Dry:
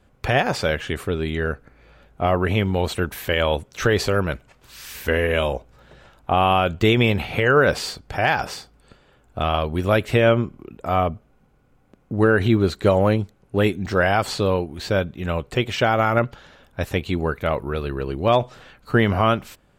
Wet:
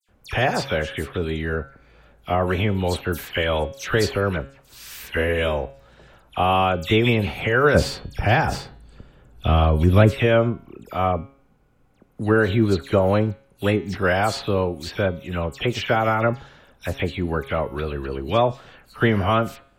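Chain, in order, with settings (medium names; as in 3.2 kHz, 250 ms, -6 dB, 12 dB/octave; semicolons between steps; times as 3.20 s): 7.66–10.06 s: bass shelf 280 Hz +12 dB; de-hum 137 Hz, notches 32; phase dispersion lows, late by 86 ms, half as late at 2.8 kHz; trim -1 dB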